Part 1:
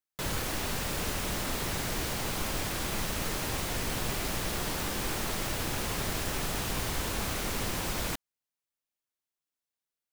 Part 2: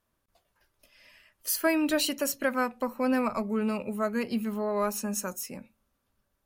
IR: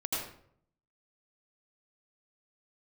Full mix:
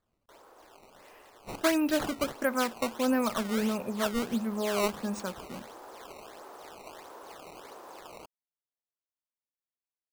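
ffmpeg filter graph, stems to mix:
-filter_complex "[0:a]highpass=frequency=360:width=0.5412,highpass=frequency=360:width=1.3066,highshelf=frequency=1600:width_type=q:width=1.5:gain=-14,adelay=100,volume=-9.5dB,afade=type=in:start_time=1.84:duration=0.8:silence=0.375837[link_01];[1:a]equalizer=frequency=11000:width=0.53:gain=-14.5,volume=-0.5dB[link_02];[link_01][link_02]amix=inputs=2:normalize=0,acrusher=samples=15:mix=1:aa=0.000001:lfo=1:lforange=24:lforate=1.5"

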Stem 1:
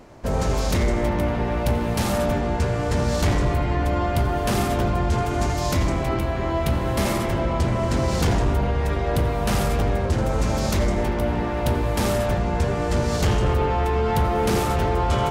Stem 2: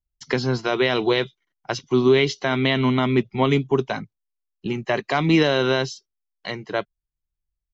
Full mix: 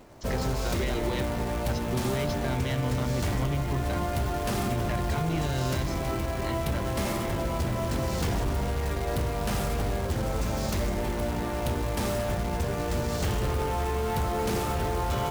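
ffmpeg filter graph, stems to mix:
ffmpeg -i stem1.wav -i stem2.wav -filter_complex "[0:a]acrusher=bits=3:mode=log:mix=0:aa=0.000001,volume=-5dB[link_01];[1:a]asubboost=boost=8.5:cutoff=150,asoftclip=type=tanh:threshold=-14dB,volume=-8dB[link_02];[link_01][link_02]amix=inputs=2:normalize=0,acompressor=threshold=-24dB:ratio=6" out.wav

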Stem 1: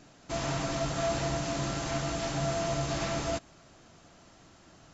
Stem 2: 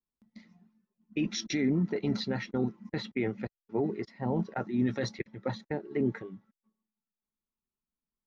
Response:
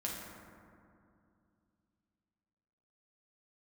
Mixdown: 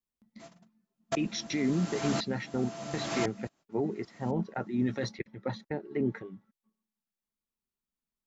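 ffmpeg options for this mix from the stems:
-filter_complex "[0:a]highpass=160,aeval=exprs='val(0)*pow(10,-28*if(lt(mod(-0.95*n/s,1),2*abs(-0.95)/1000),1-mod(-0.95*n/s,1)/(2*abs(-0.95)/1000),(mod(-0.95*n/s,1)-2*abs(-0.95)/1000)/(1-2*abs(-0.95)/1000))/20)':channel_layout=same,adelay=100,volume=2.5dB[link_01];[1:a]volume=-1dB,asplit=2[link_02][link_03];[link_03]apad=whole_len=222221[link_04];[link_01][link_04]sidechaingate=range=-57dB:threshold=-56dB:ratio=16:detection=peak[link_05];[link_05][link_02]amix=inputs=2:normalize=0"

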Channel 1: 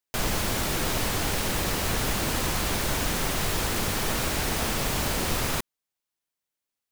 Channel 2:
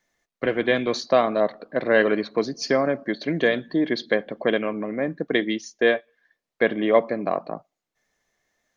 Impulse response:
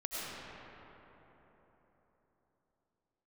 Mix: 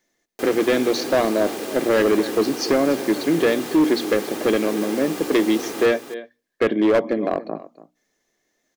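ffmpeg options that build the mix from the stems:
-filter_complex "[0:a]highpass=270,aecho=1:1:2.5:0.35,adelay=250,volume=-7.5dB,asplit=2[link_01][link_02];[link_02]volume=-8dB[link_03];[1:a]highshelf=frequency=2400:gain=9.5,bandreject=frequency=60:width_type=h:width=6,bandreject=frequency=120:width_type=h:width=6,bandreject=frequency=180:width_type=h:width=6,bandreject=frequency=240:width_type=h:width=6,bandreject=frequency=300:width_type=h:width=6,volume=-4.5dB,asplit=2[link_04][link_05];[link_05]volume=-17.5dB[link_06];[link_03][link_06]amix=inputs=2:normalize=0,aecho=0:1:285:1[link_07];[link_01][link_04][link_07]amix=inputs=3:normalize=0,equalizer=frequency=320:width_type=o:width=1.6:gain=13,volume=12dB,asoftclip=hard,volume=-12dB"

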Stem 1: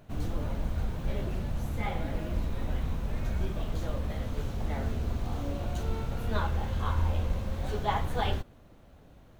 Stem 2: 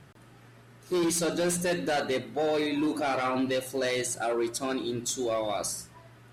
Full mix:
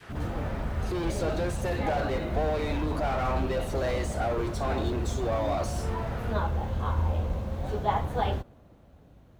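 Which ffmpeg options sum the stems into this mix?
ffmpeg -i stem1.wav -i stem2.wav -filter_complex "[0:a]highpass=42,lowshelf=frequency=380:gain=6.5,volume=-4.5dB[link_01];[1:a]highpass=frequency=240:width=0.5412,highpass=frequency=240:width=1.3066,acompressor=threshold=-36dB:ratio=3,asplit=2[link_02][link_03];[link_03]highpass=frequency=720:poles=1,volume=21dB,asoftclip=type=tanh:threshold=-30dB[link_04];[link_02][link_04]amix=inputs=2:normalize=0,lowpass=frequency=2300:poles=1,volume=-6dB,volume=0dB[link_05];[link_01][link_05]amix=inputs=2:normalize=0,adynamicequalizer=threshold=0.00447:dfrequency=710:dqfactor=0.7:tfrequency=710:tqfactor=0.7:attack=5:release=100:ratio=0.375:range=3.5:mode=boostabove:tftype=bell" out.wav

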